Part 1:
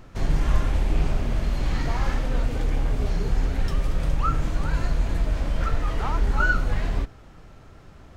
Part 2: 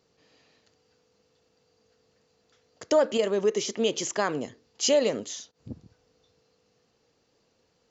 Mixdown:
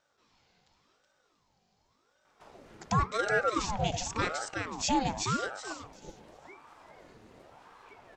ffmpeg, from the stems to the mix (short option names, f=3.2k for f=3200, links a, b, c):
-filter_complex "[0:a]highpass=110,acompressor=threshold=-36dB:ratio=2,adelay=2250,volume=-15.5dB[a];[1:a]volume=-3dB,asplit=3[b][c][d];[c]volume=-3.5dB[e];[d]apad=whole_len=459441[f];[a][f]sidechaincompress=threshold=-30dB:ratio=8:attack=16:release=1440[g];[e]aecho=0:1:373|746|1119|1492:1|0.24|0.0576|0.0138[h];[g][b][h]amix=inputs=3:normalize=0,aeval=exprs='val(0)*sin(2*PI*660*n/s+660*0.6/0.9*sin(2*PI*0.9*n/s))':c=same"